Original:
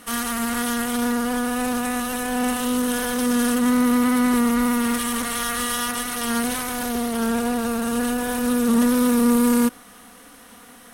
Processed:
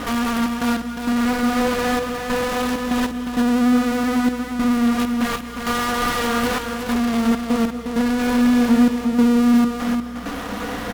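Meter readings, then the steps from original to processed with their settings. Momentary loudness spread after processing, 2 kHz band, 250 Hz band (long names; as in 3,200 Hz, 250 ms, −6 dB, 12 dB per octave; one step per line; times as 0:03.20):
8 LU, +2.0 dB, +2.5 dB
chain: running median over 5 samples
high-shelf EQ 2,100 Hz −10 dB
flanger 0.24 Hz, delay 7.3 ms, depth 3.3 ms, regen −38%
in parallel at −10.5 dB: fuzz pedal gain 53 dB, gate −60 dBFS
on the sum: gate pattern "xxx.x..xxxxxx.." 98 BPM
single-tap delay 356 ms −6 dB
mains hum 60 Hz, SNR 21 dB
reverb whose tail is shaped and stops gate 270 ms rising, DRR 10.5 dB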